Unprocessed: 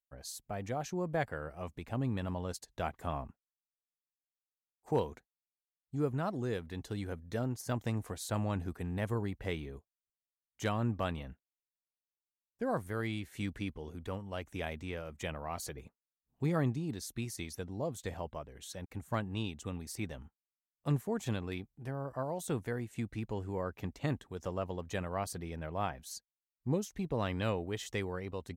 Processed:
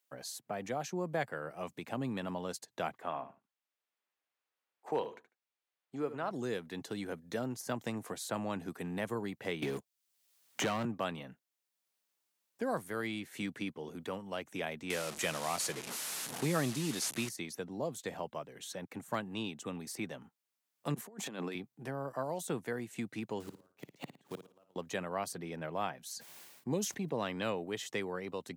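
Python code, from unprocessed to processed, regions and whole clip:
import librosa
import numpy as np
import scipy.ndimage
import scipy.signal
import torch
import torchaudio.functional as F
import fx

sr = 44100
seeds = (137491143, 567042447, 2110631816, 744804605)

y = fx.chain(x, sr, fx.bass_treble(bass_db=-12, treble_db=-15),
    fx.echo_feedback(ms=74, feedback_pct=18, wet_db=-13), at=(2.98, 6.31))
y = fx.chain(y, sr, fx.leveller(passes=3),
    fx.band_squash(depth_pct=70), at=(9.62, 10.85))
y = fx.chain(y, sr, fx.delta_mod(bps=64000, step_db=-43.5),
    fx.high_shelf(hz=2800.0, db=10.5),
    fx.leveller(passes=1), at=(14.9, 17.29))
y = fx.chain(y, sr, fx.highpass(hz=170.0, slope=24),
    fx.over_compress(threshold_db=-42.0, ratio=-0.5), at=(20.94, 21.55))
y = fx.chain(y, sr, fx.quant_companded(bits=6),
    fx.gate_flip(shuts_db=-30.0, range_db=-38),
    fx.room_flutter(wall_m=9.6, rt60_s=0.34), at=(23.4, 24.76))
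y = fx.chain(y, sr, fx.notch(hz=1300.0, q=10.0),
    fx.sustainer(db_per_s=50.0), at=(26.11, 27.23))
y = scipy.signal.sosfilt(scipy.signal.butter(4, 140.0, 'highpass', fs=sr, output='sos'), y)
y = fx.low_shelf(y, sr, hz=260.0, db=-4.0)
y = fx.band_squash(y, sr, depth_pct=40)
y = y * 10.0 ** (1.0 / 20.0)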